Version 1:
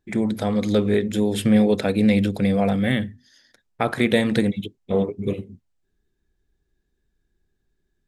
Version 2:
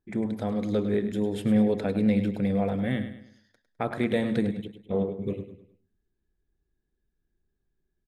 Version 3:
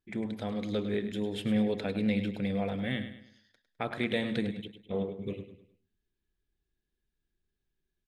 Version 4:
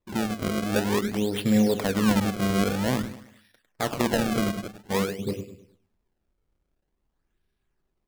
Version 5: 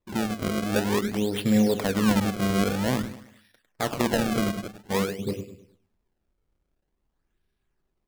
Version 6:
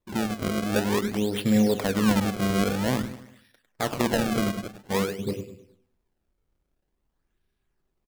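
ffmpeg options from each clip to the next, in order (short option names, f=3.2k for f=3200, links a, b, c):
-filter_complex "[0:a]highshelf=f=2.1k:g=-9,asplit=2[a][b];[b]aecho=0:1:103|206|309|412:0.299|0.116|0.0454|0.0177[c];[a][c]amix=inputs=2:normalize=0,volume=-6dB"
-af "equalizer=f=3.1k:t=o:w=1.5:g=10,volume=-6dB"
-af "acrusher=samples=28:mix=1:aa=0.000001:lfo=1:lforange=44.8:lforate=0.5,volume=7dB"
-af anull
-filter_complex "[0:a]asplit=2[a][b];[b]adelay=95,lowpass=f=2k:p=1,volume=-21dB,asplit=2[c][d];[d]adelay=95,lowpass=f=2k:p=1,volume=0.5,asplit=2[e][f];[f]adelay=95,lowpass=f=2k:p=1,volume=0.5,asplit=2[g][h];[h]adelay=95,lowpass=f=2k:p=1,volume=0.5[i];[a][c][e][g][i]amix=inputs=5:normalize=0"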